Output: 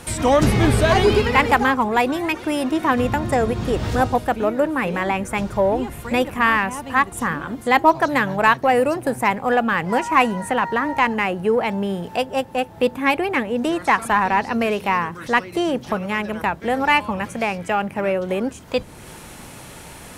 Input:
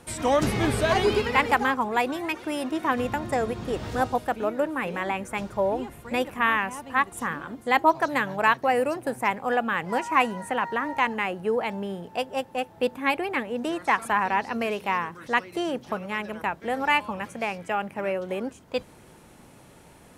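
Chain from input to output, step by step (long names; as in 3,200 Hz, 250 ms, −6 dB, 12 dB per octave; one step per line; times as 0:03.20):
low-shelf EQ 150 Hz +8 dB
in parallel at −9 dB: soft clipping −23 dBFS, distortion −8 dB
on the sum: one half of a high-frequency compander encoder only
level +4 dB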